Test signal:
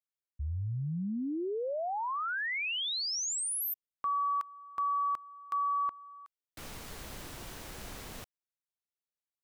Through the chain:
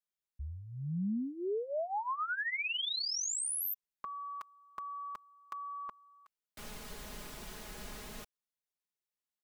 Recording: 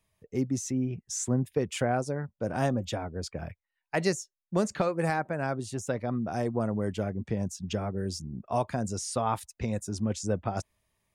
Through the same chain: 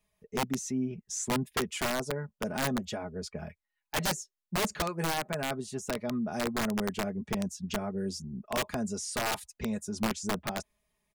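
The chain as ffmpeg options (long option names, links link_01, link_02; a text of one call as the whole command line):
ffmpeg -i in.wav -af "aecho=1:1:4.8:0.7,aeval=exprs='(mod(9.44*val(0)+1,2)-1)/9.44':channel_layout=same,volume=-3.5dB" out.wav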